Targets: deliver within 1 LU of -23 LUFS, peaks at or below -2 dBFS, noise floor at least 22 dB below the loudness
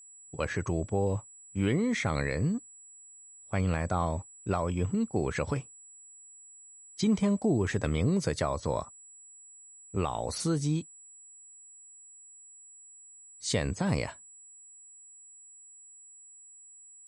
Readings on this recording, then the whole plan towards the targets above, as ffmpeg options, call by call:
steady tone 7800 Hz; tone level -50 dBFS; loudness -31.0 LUFS; peak -17.0 dBFS; loudness target -23.0 LUFS
-> -af "bandreject=f=7.8k:w=30"
-af "volume=8dB"

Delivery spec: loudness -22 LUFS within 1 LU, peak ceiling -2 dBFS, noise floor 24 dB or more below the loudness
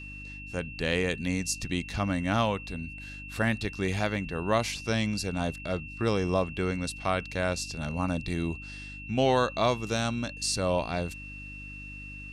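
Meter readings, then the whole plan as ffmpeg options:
hum 50 Hz; harmonics up to 300 Hz; hum level -44 dBFS; steady tone 2700 Hz; tone level -42 dBFS; loudness -29.5 LUFS; peak -12.0 dBFS; loudness target -22.0 LUFS
-> -af "bandreject=f=50:t=h:w=4,bandreject=f=100:t=h:w=4,bandreject=f=150:t=h:w=4,bandreject=f=200:t=h:w=4,bandreject=f=250:t=h:w=4,bandreject=f=300:t=h:w=4"
-af "bandreject=f=2.7k:w=30"
-af "volume=7.5dB"

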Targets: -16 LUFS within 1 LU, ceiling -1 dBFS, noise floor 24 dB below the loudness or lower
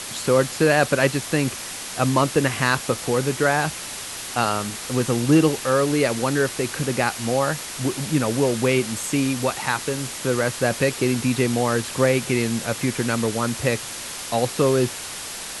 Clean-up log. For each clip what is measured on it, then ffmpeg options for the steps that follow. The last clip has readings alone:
noise floor -33 dBFS; noise floor target -46 dBFS; loudness -22.0 LUFS; peak -4.5 dBFS; loudness target -16.0 LUFS
-> -af "afftdn=nr=13:nf=-33"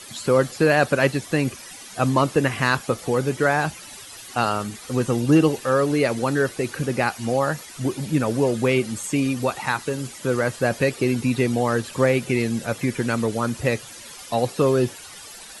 noise floor -41 dBFS; noise floor target -47 dBFS
-> -af "afftdn=nr=6:nf=-41"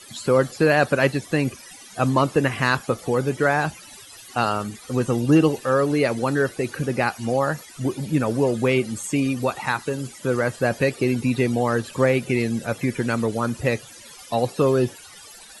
noise floor -44 dBFS; noise floor target -47 dBFS
-> -af "afftdn=nr=6:nf=-44"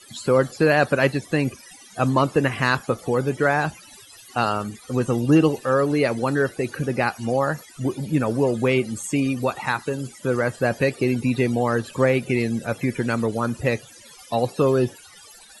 noise floor -47 dBFS; loudness -22.5 LUFS; peak -5.5 dBFS; loudness target -16.0 LUFS
-> -af "volume=6.5dB,alimiter=limit=-1dB:level=0:latency=1"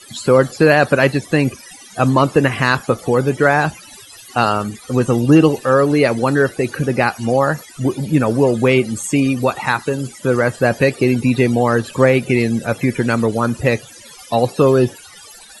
loudness -16.0 LUFS; peak -1.0 dBFS; noise floor -40 dBFS

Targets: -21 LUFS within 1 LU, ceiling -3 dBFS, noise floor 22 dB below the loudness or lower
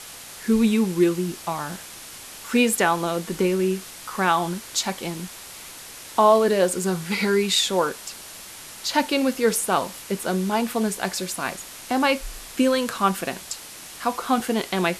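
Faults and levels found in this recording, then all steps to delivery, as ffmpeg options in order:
noise floor -41 dBFS; noise floor target -45 dBFS; loudness -23.0 LUFS; peak -7.0 dBFS; loudness target -21.0 LUFS
-> -af "afftdn=nr=6:nf=-41"
-af "volume=2dB"

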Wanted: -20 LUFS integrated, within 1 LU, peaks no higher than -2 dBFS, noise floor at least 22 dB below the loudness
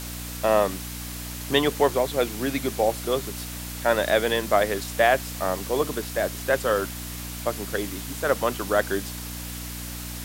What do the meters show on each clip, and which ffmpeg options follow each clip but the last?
hum 60 Hz; harmonics up to 300 Hz; hum level -35 dBFS; noise floor -35 dBFS; noise floor target -48 dBFS; loudness -25.5 LUFS; peak -5.5 dBFS; loudness target -20.0 LUFS
-> -af "bandreject=f=60:t=h:w=4,bandreject=f=120:t=h:w=4,bandreject=f=180:t=h:w=4,bandreject=f=240:t=h:w=4,bandreject=f=300:t=h:w=4"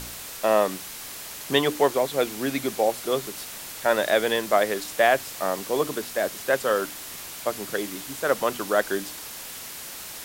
hum none; noise floor -38 dBFS; noise floor target -48 dBFS
-> -af "afftdn=nr=10:nf=-38"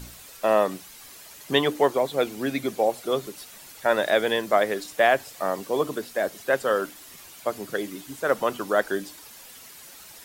noise floor -46 dBFS; noise floor target -47 dBFS
-> -af "afftdn=nr=6:nf=-46"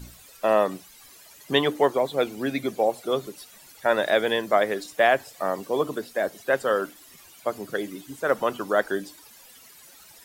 noise floor -51 dBFS; loudness -25.0 LUFS; peak -6.0 dBFS; loudness target -20.0 LUFS
-> -af "volume=5dB,alimiter=limit=-2dB:level=0:latency=1"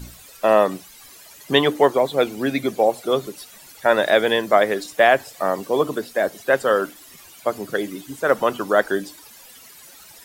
loudness -20.0 LUFS; peak -2.0 dBFS; noise floor -46 dBFS

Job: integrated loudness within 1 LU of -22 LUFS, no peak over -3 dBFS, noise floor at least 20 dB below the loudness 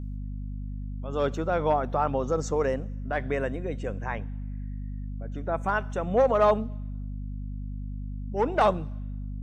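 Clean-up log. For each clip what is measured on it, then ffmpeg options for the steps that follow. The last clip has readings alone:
hum 50 Hz; harmonics up to 250 Hz; hum level -32 dBFS; loudness -29.0 LUFS; peak -9.5 dBFS; loudness target -22.0 LUFS
-> -af "bandreject=f=50:t=h:w=4,bandreject=f=100:t=h:w=4,bandreject=f=150:t=h:w=4,bandreject=f=200:t=h:w=4,bandreject=f=250:t=h:w=4"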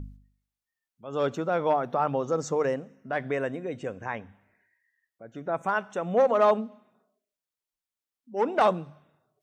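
hum none; loudness -27.5 LUFS; peak -10.0 dBFS; loudness target -22.0 LUFS
-> -af "volume=5.5dB"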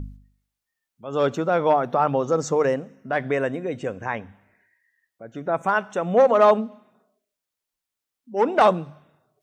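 loudness -22.0 LUFS; peak -4.5 dBFS; noise floor -86 dBFS

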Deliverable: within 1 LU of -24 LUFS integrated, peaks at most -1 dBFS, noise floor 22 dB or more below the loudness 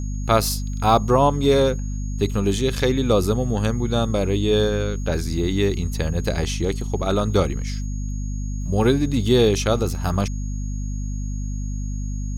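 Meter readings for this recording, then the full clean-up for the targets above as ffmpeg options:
hum 50 Hz; harmonics up to 250 Hz; hum level -24 dBFS; steady tone 6600 Hz; tone level -43 dBFS; loudness -22.0 LUFS; peak -4.0 dBFS; loudness target -24.0 LUFS
-> -af "bandreject=f=50:t=h:w=4,bandreject=f=100:t=h:w=4,bandreject=f=150:t=h:w=4,bandreject=f=200:t=h:w=4,bandreject=f=250:t=h:w=4"
-af "bandreject=f=6.6k:w=30"
-af "volume=-2dB"

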